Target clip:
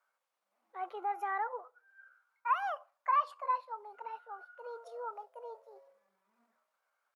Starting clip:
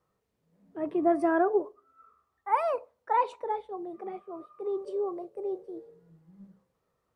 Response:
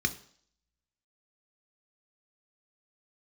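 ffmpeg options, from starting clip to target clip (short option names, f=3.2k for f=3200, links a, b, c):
-af "alimiter=limit=-21dB:level=0:latency=1:release=362,asetrate=52444,aresample=44100,atempo=0.840896,highpass=f=1k:t=q:w=1.6,volume=-3dB"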